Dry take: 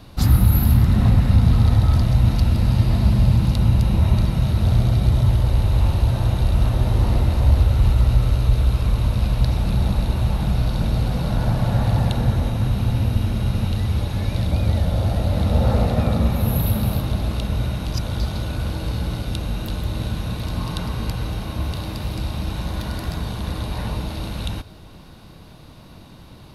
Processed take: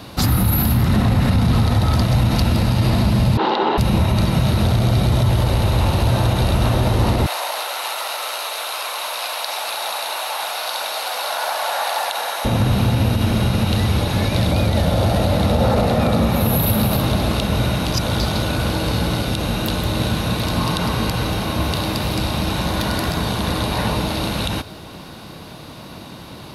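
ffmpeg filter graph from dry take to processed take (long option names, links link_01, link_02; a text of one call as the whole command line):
ffmpeg -i in.wav -filter_complex "[0:a]asettb=1/sr,asplit=3[link_01][link_02][link_03];[link_01]atrim=end=3.374[link_04];[link_02]atrim=start=3.37:end=3.78,asetpts=PTS-STARTPTS,afade=type=in:duration=0.004:curve=qsin,afade=type=out:start_time=0.406:duration=0.004:curve=qsin,acontrast=70,highpass=frequency=360:width=0.5412,highpass=frequency=360:width=1.3066,equalizer=frequency=390:width_type=q:width=4:gain=7,equalizer=frequency=600:width_type=q:width=4:gain=-6,equalizer=frequency=850:width_type=q:width=4:gain=8,equalizer=frequency=2400:width_type=q:width=4:gain=-9,lowpass=frequency=3400:width=0.5412,lowpass=frequency=3400:width=1.3066[link_05];[link_03]atrim=start=3.776[link_06];[link_04][link_05]acrossfade=duration=0.004:curve1=hsin:curve2=qsin[link_07];[link_07][link_06]acrossfade=duration=0.004:curve1=qsin:curve2=hsin,asettb=1/sr,asplit=3[link_08][link_09][link_10];[link_08]atrim=end=7.264[link_11];[link_09]atrim=start=7.26:end=12.45,asetpts=PTS-STARTPTS,afade=type=in:duration=0.004:curve=qsin,afade=type=out:start_time=5.186:duration=0.004:curve=qsin,highpass=frequency=680:width=0.5412,highpass=frequency=680:width=1.3066,highshelf=frequency=6600:gain=6[link_12];[link_10]atrim=start=12.446[link_13];[link_11][link_12]acrossfade=duration=0.004:curve1=hsin:curve2=qsin[link_14];[link_14][link_13]acrossfade=duration=0.004:curve1=qsin:curve2=hsin,highpass=frequency=220:poles=1,alimiter=level_in=18dB:limit=-1dB:release=50:level=0:latency=1,volume=-7dB" out.wav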